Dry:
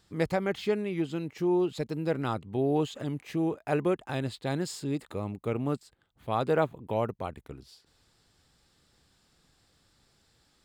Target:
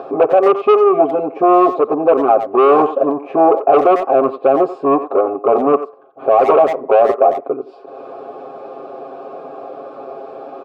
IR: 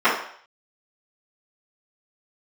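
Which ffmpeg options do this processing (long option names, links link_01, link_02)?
-filter_complex "[0:a]highpass=frequency=320:poles=1,equalizer=frequency=410:width=0.86:gain=6.5,aeval=exprs='0.299*(cos(1*acos(clip(val(0)/0.299,-1,1)))-cos(1*PI/2))+0.0668*(cos(4*acos(clip(val(0)/0.299,-1,1)))-cos(4*PI/2))':channel_layout=same,aecho=1:1:7.4:0.95,acompressor=mode=upward:threshold=-31dB:ratio=2.5,firequalizer=gain_entry='entry(410,0);entry(720,-12);entry(2800,-29)':delay=0.05:min_phase=1,asplit=2[link_01][link_02];[link_02]highpass=frequency=720:poles=1,volume=28dB,asoftclip=type=tanh:threshold=-6.5dB[link_03];[link_01][link_03]amix=inputs=2:normalize=0,lowpass=frequency=1800:poles=1,volume=-6dB,asplit=3[link_04][link_05][link_06];[link_04]bandpass=frequency=730:width_type=q:width=8,volume=0dB[link_07];[link_05]bandpass=frequency=1090:width_type=q:width=8,volume=-6dB[link_08];[link_06]bandpass=frequency=2440:width_type=q:width=8,volume=-9dB[link_09];[link_07][link_08][link_09]amix=inputs=3:normalize=0,asplit=2[link_10][link_11];[link_11]adelay=90,highpass=300,lowpass=3400,asoftclip=type=hard:threshold=-24dB,volume=-12dB[link_12];[link_10][link_12]amix=inputs=2:normalize=0,asplit=2[link_13][link_14];[1:a]atrim=start_sample=2205,asetrate=41454,aresample=44100[link_15];[link_14][link_15]afir=irnorm=-1:irlink=0,volume=-42.5dB[link_16];[link_13][link_16]amix=inputs=2:normalize=0,alimiter=level_in=22dB:limit=-1dB:release=50:level=0:latency=1,volume=-1dB"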